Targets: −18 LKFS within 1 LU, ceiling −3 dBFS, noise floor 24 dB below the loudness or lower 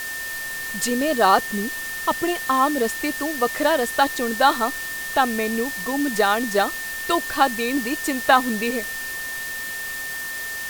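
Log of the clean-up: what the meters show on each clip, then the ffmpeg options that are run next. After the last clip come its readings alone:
interfering tone 1,800 Hz; level of the tone −29 dBFS; background noise floor −30 dBFS; target noise floor −46 dBFS; integrated loudness −22.0 LKFS; sample peak −3.0 dBFS; target loudness −18.0 LKFS
→ -af "bandreject=frequency=1800:width=30"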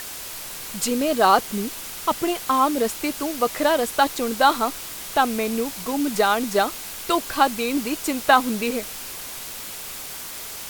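interfering tone none found; background noise floor −35 dBFS; target noise floor −47 dBFS
→ -af "afftdn=noise_reduction=12:noise_floor=-35"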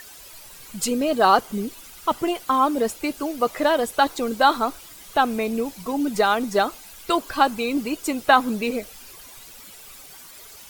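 background noise floor −44 dBFS; target noise floor −47 dBFS
→ -af "afftdn=noise_reduction=6:noise_floor=-44"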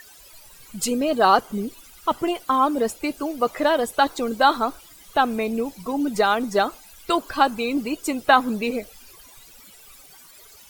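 background noise floor −48 dBFS; integrated loudness −22.5 LKFS; sample peak −3.0 dBFS; target loudness −18.0 LKFS
→ -af "volume=4.5dB,alimiter=limit=-3dB:level=0:latency=1"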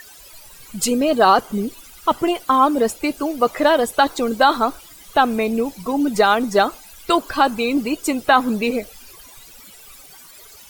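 integrated loudness −18.5 LKFS; sample peak −3.0 dBFS; background noise floor −44 dBFS

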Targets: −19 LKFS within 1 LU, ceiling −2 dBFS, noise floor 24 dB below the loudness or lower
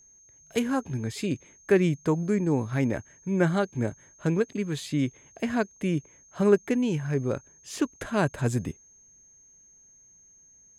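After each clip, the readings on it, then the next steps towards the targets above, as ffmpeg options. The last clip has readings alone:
interfering tone 6,400 Hz; level of the tone −54 dBFS; integrated loudness −27.5 LKFS; sample peak −9.0 dBFS; target loudness −19.0 LKFS
→ -af "bandreject=frequency=6400:width=30"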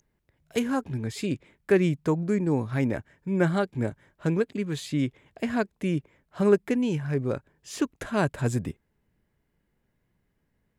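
interfering tone none found; integrated loudness −27.5 LKFS; sample peak −9.0 dBFS; target loudness −19.0 LKFS
→ -af "volume=8.5dB,alimiter=limit=-2dB:level=0:latency=1"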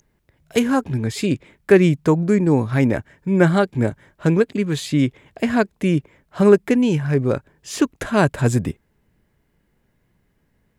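integrated loudness −19.5 LKFS; sample peak −2.0 dBFS; background noise floor −66 dBFS

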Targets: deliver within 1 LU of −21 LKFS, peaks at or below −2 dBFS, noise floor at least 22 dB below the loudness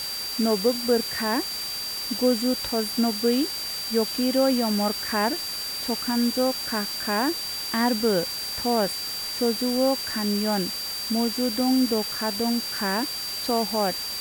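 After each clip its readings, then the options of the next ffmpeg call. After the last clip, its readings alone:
interfering tone 4,700 Hz; level of the tone −30 dBFS; background noise floor −32 dBFS; target noise floor −47 dBFS; integrated loudness −24.5 LKFS; sample peak −9.5 dBFS; target loudness −21.0 LKFS
→ -af "bandreject=frequency=4700:width=30"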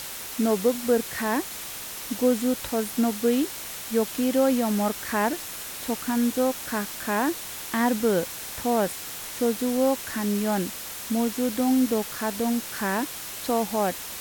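interfering tone none found; background noise floor −37 dBFS; target noise floor −48 dBFS
→ -af "afftdn=noise_reduction=11:noise_floor=-37"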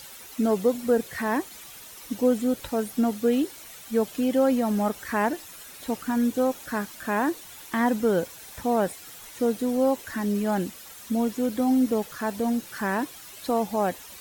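background noise floor −45 dBFS; target noise floor −48 dBFS
→ -af "afftdn=noise_reduction=6:noise_floor=-45"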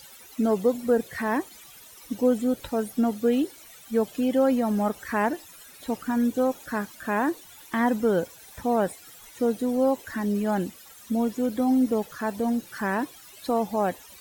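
background noise floor −49 dBFS; integrated loudness −26.0 LKFS; sample peak −11.0 dBFS; target loudness −21.0 LKFS
→ -af "volume=5dB"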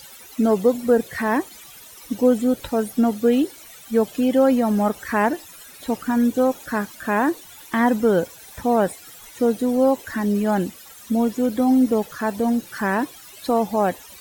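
integrated loudness −21.0 LKFS; sample peak −6.0 dBFS; background noise floor −44 dBFS

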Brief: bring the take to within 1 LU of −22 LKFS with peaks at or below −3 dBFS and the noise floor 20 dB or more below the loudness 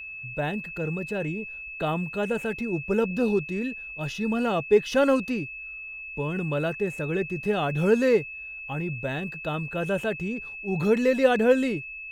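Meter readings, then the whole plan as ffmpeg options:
interfering tone 2,600 Hz; level of the tone −36 dBFS; integrated loudness −26.5 LKFS; sample peak −8.0 dBFS; target loudness −22.0 LKFS
→ -af "bandreject=frequency=2600:width=30"
-af "volume=4.5dB"

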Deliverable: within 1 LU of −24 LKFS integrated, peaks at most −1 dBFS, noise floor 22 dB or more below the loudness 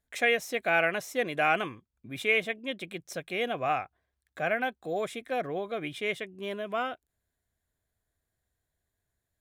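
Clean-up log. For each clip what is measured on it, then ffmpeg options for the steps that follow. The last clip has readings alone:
integrated loudness −30.5 LKFS; sample peak −12.5 dBFS; target loudness −24.0 LKFS
→ -af "volume=6.5dB"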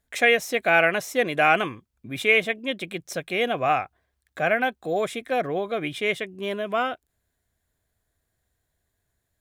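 integrated loudness −24.0 LKFS; sample peak −6.0 dBFS; background noise floor −78 dBFS

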